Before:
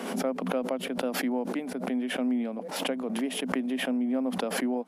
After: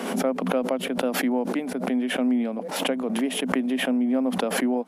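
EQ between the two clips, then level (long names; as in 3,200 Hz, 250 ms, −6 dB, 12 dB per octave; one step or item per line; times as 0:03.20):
dynamic equaliser 4,900 Hz, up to −4 dB, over −54 dBFS, Q 3.8
+5.0 dB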